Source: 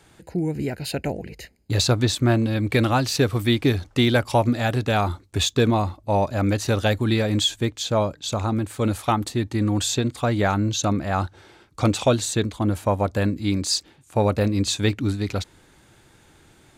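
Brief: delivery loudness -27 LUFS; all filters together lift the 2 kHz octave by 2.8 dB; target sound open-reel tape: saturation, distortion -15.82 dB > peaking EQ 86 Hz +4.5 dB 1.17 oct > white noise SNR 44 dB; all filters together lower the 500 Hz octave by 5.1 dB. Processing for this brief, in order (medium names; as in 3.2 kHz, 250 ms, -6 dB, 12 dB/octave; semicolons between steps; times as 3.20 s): peaking EQ 500 Hz -7 dB; peaking EQ 2 kHz +4 dB; saturation -15 dBFS; peaking EQ 86 Hz +4.5 dB 1.17 oct; white noise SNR 44 dB; trim -3 dB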